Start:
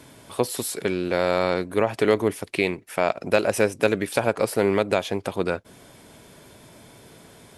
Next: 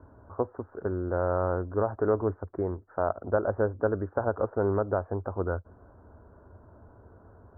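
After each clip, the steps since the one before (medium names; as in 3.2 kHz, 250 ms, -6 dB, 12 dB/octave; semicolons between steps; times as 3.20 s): steep low-pass 1.5 kHz 72 dB/octave; resonant low shelf 110 Hz +8 dB, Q 3; trim -5 dB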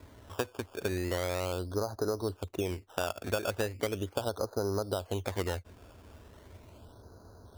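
compression, threshold -28 dBFS, peak gain reduction 9 dB; decimation with a swept rate 15×, swing 100% 0.38 Hz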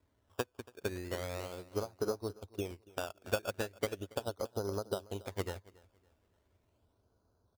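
on a send: feedback delay 281 ms, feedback 36%, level -9 dB; on the sum: upward expansion 2.5:1, over -41 dBFS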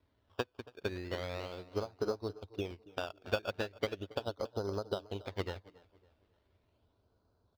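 resonant high shelf 5.9 kHz -12.5 dB, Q 1.5; bucket-brigade echo 274 ms, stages 2048, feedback 36%, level -22 dB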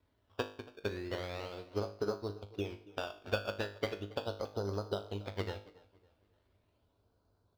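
feedback comb 51 Hz, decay 0.45 s, harmonics all, mix 70%; trim +5.5 dB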